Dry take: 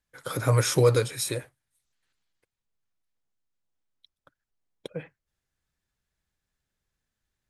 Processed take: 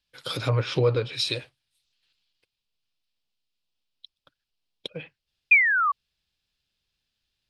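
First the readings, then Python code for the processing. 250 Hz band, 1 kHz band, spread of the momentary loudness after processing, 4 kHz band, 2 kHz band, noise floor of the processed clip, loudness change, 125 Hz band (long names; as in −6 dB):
−2.0 dB, +7.0 dB, 21 LU, +5.5 dB, +16.0 dB, −84 dBFS, +2.0 dB, −2.0 dB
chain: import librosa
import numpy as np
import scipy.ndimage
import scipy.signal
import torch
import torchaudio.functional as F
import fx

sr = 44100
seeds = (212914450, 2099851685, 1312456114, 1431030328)

y = fx.env_lowpass_down(x, sr, base_hz=1500.0, full_db=-18.5)
y = fx.spec_paint(y, sr, seeds[0], shape='fall', start_s=5.51, length_s=0.41, low_hz=1100.0, high_hz=2500.0, level_db=-20.0)
y = fx.band_shelf(y, sr, hz=3600.0, db=13.5, octaves=1.3)
y = F.gain(torch.from_numpy(y), -2.0).numpy()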